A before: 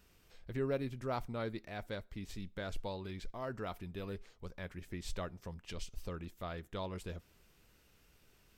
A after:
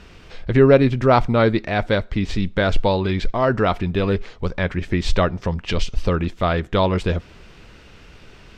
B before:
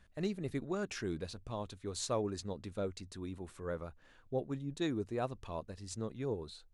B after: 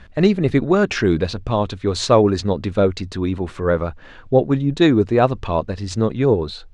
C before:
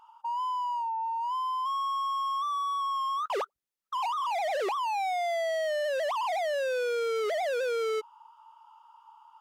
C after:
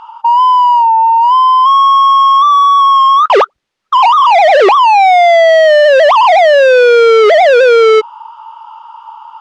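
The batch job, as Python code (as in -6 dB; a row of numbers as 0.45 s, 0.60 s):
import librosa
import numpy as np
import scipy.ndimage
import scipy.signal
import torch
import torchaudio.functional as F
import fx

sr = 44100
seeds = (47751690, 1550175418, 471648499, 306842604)

y = scipy.signal.sosfilt(scipy.signal.butter(2, 4100.0, 'lowpass', fs=sr, output='sos'), x)
y = librosa.util.normalize(y) * 10.0 ** (-1.5 / 20.0)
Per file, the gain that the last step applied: +23.0 dB, +21.5 dB, +24.0 dB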